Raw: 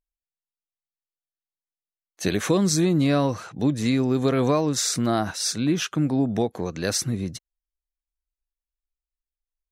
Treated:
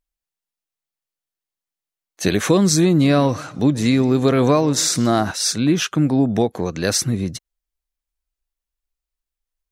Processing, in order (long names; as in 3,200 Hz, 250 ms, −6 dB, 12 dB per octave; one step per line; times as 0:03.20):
0:02.90–0:05.32: feedback echo with a swinging delay time 133 ms, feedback 37%, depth 207 cents, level −20.5 dB
level +5.5 dB